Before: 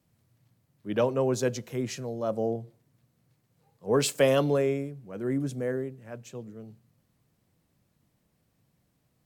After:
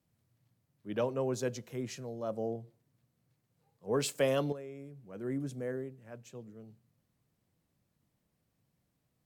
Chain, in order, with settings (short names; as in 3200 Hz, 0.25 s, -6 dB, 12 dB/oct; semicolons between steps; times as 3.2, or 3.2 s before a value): 4.52–5.07 compressor 10:1, threshold -34 dBFS, peak gain reduction 12.5 dB; gain -7 dB